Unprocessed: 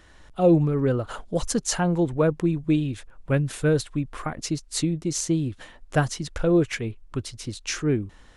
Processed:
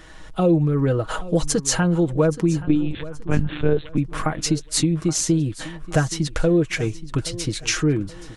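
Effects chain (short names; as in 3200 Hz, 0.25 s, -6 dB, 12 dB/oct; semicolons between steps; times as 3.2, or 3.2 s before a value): comb 6.3 ms, depth 50%; compressor 2.5:1, threshold -27 dBFS, peak gain reduction 11.5 dB; 2.61–3.98 monotone LPC vocoder at 8 kHz 150 Hz; feedback echo 0.825 s, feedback 33%, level -17 dB; gain +8 dB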